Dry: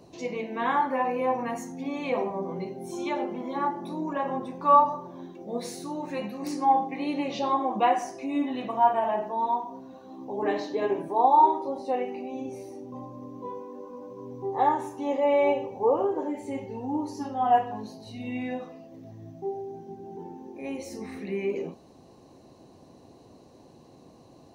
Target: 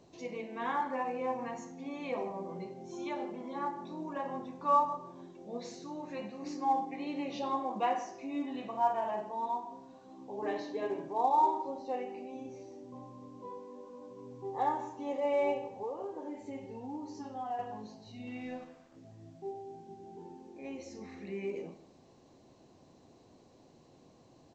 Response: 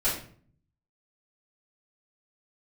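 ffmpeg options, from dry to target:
-filter_complex "[0:a]asettb=1/sr,asplit=3[a][b][c];[a]atrim=end=15.584[d];[b]atrim=start=15.58:end=17.59,asetpts=PTS-STARTPTS,afade=t=in:d=0.004:c=qsin,afade=t=out:st=2.006:d=0.004:c=qsin,acompressor=threshold=-30dB:ratio=3[e];[c]atrim=start=17.586[f];[d][e]acrossfade=d=0.004:c1=hsin:c2=qsin[g];[g][f]acrossfade=d=0.004:c1=qsin:c2=hsin,asettb=1/sr,asplit=3[h][i][j];[h]atrim=end=18.274[k];[i]atrim=start=18.27:end=18.96,asetpts=PTS-STARTPTS,afade=t=in:d=0.004:c=qsin,afade=t=out:st=0.686:d=0.004:c=qsin,aeval=exprs='sgn(val(0))*max(abs(val(0))-0.00355,0)':c=same[l];[j]atrim=start=18.956[m];[k][l]acrossfade=d=0.004:c1=hsin:c2=qsin[n];[n][m]acrossfade=d=0.004:c1=qsin:c2=hsin,asplit=2[o][p];[p]adelay=159,lowpass=f=2.8k:p=1,volume=-16.5dB,asplit=2[q][r];[r]adelay=159,lowpass=f=2.8k:p=1,volume=0.19[s];[o][q][s]amix=inputs=3:normalize=0,asplit=2[t][u];[1:a]atrim=start_sample=2205,adelay=37[v];[u][v]afir=irnorm=-1:irlink=0,volume=-24.5dB[w];[t][w]amix=inputs=2:normalize=0,volume=-8.5dB" -ar 16000 -c:a pcm_alaw

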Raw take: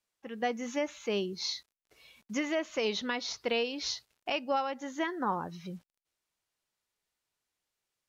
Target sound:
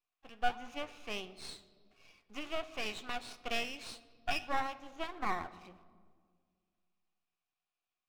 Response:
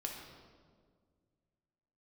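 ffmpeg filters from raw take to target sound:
-filter_complex "[0:a]asplit=3[a][b][c];[a]bandpass=f=730:t=q:w=8,volume=0dB[d];[b]bandpass=f=1.09k:t=q:w=8,volume=-6dB[e];[c]bandpass=f=2.44k:t=q:w=8,volume=-9dB[f];[d][e][f]amix=inputs=3:normalize=0,equalizer=f=550:t=o:w=1.2:g=-12,flanger=delay=3.9:depth=7.2:regen=80:speed=1.5:shape=sinusoidal,aeval=exprs='max(val(0),0)':c=same,asplit=2[g][h];[1:a]atrim=start_sample=2205[i];[h][i]afir=irnorm=-1:irlink=0,volume=-9.5dB[j];[g][j]amix=inputs=2:normalize=0,volume=17.5dB"

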